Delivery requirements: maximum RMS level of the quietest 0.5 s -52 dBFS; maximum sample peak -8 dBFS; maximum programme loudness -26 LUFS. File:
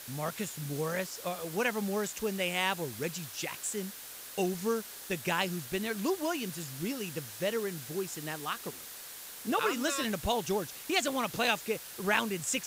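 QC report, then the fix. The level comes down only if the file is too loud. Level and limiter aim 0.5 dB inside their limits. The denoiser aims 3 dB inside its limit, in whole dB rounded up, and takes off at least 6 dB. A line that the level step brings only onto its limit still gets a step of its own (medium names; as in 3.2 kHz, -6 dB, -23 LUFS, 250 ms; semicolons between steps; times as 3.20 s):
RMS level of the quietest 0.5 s -46 dBFS: fail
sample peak -13.0 dBFS: pass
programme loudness -33.0 LUFS: pass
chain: noise reduction 9 dB, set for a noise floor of -46 dBFS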